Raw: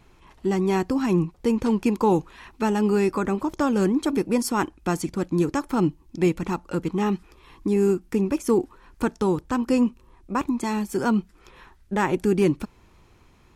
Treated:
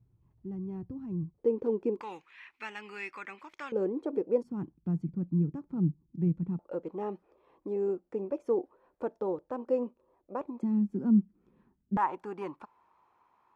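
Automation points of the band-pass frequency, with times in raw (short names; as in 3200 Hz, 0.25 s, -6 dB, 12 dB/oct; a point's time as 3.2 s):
band-pass, Q 3.6
110 Hz
from 1.38 s 430 Hz
from 2.01 s 2200 Hz
from 3.72 s 490 Hz
from 4.43 s 160 Hz
from 6.59 s 560 Hz
from 10.63 s 210 Hz
from 11.97 s 960 Hz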